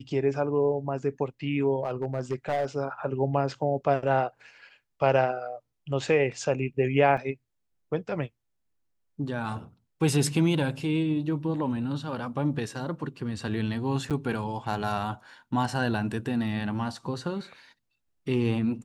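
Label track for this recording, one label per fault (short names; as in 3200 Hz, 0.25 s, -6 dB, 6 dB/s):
1.840000	2.660000	clipped -22.5 dBFS
7.170000	7.180000	gap 5.1 ms
14.100000	14.110000	gap 7.6 ms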